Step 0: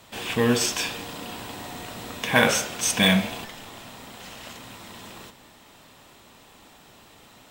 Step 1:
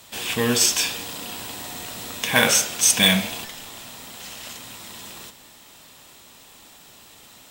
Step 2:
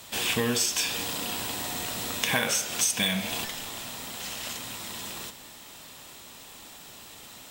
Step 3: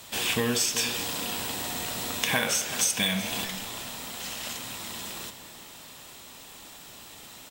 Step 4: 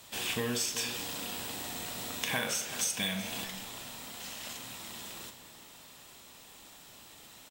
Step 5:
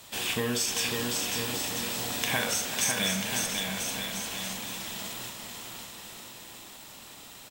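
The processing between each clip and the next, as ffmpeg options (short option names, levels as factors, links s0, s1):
-af "highshelf=f=3200:g=11.5,volume=0.841"
-af "acompressor=threshold=0.0631:ratio=10,volume=1.19"
-filter_complex "[0:a]asplit=2[s0][s1];[s1]adelay=379,volume=0.251,highshelf=f=4000:g=-8.53[s2];[s0][s2]amix=inputs=2:normalize=0"
-filter_complex "[0:a]asplit=2[s0][s1];[s1]adelay=41,volume=0.266[s2];[s0][s2]amix=inputs=2:normalize=0,volume=0.447"
-af "aecho=1:1:550|990|1342|1624|1849:0.631|0.398|0.251|0.158|0.1,volume=1.5"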